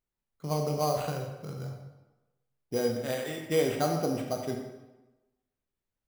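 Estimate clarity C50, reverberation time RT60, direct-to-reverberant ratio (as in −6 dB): 4.5 dB, 1.1 s, 2.0 dB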